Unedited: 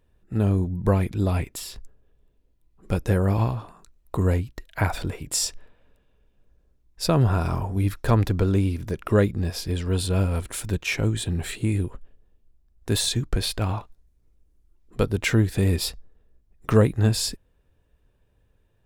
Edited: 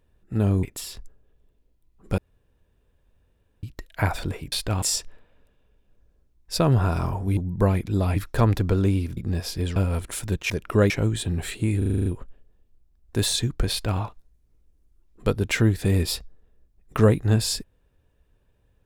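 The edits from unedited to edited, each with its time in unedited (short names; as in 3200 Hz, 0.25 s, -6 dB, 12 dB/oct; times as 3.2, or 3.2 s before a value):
0.63–1.42 move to 7.86
2.97–4.42 room tone
8.87–9.27 move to 10.91
9.86–10.17 cut
11.79 stutter 0.04 s, 8 plays
13.43–13.73 copy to 5.31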